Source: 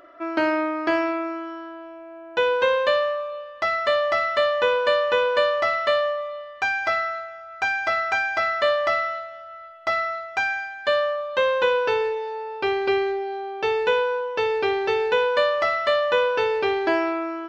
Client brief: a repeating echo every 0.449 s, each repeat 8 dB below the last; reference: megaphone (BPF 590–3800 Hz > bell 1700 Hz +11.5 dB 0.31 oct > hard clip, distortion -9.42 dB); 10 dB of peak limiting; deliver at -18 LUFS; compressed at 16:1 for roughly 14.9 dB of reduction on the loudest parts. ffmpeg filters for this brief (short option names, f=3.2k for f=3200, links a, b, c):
-af "acompressor=threshold=-31dB:ratio=16,alimiter=level_in=4.5dB:limit=-24dB:level=0:latency=1,volume=-4.5dB,highpass=590,lowpass=3.8k,equalizer=f=1.7k:t=o:w=0.31:g=11.5,aecho=1:1:449|898|1347|1796|2245:0.398|0.159|0.0637|0.0255|0.0102,asoftclip=type=hard:threshold=-35dB,volume=19dB"